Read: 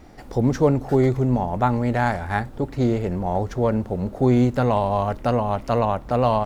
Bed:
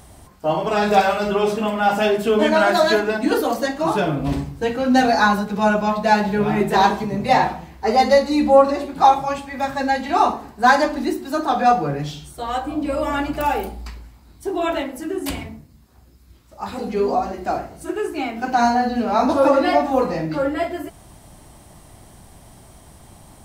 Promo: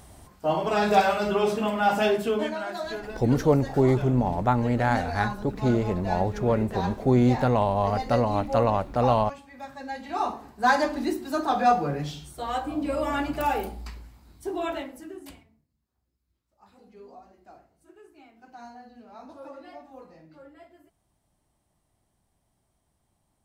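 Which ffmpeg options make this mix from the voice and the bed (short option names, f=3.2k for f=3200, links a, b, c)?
-filter_complex "[0:a]adelay=2850,volume=-2.5dB[a];[1:a]volume=7.5dB,afade=t=out:st=2.13:d=0.44:silence=0.237137,afade=t=in:st=9.82:d=1.21:silence=0.251189,afade=t=out:st=14.27:d=1.17:silence=0.0707946[b];[a][b]amix=inputs=2:normalize=0"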